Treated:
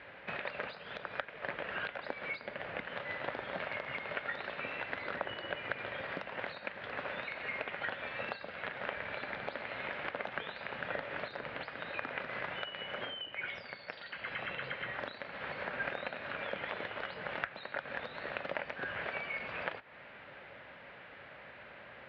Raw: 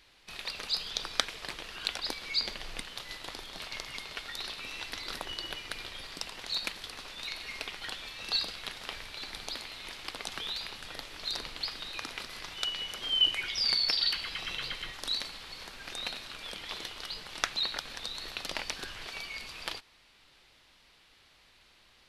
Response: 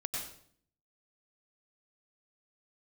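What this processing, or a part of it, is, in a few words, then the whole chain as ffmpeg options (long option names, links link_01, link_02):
bass amplifier: -af "acompressor=threshold=-46dB:ratio=6,highpass=frequency=76:width=0.5412,highpass=frequency=76:width=1.3066,equalizer=frequency=80:width_type=q:width=4:gain=-10,equalizer=frequency=330:width_type=q:width=4:gain=-5,equalizer=frequency=570:width_type=q:width=4:gain=9,equalizer=frequency=1100:width_type=q:width=4:gain=-3,equalizer=frequency=1600:width_type=q:width=4:gain=4,lowpass=frequency=2200:width=0.5412,lowpass=frequency=2200:width=1.3066,volume=13.5dB"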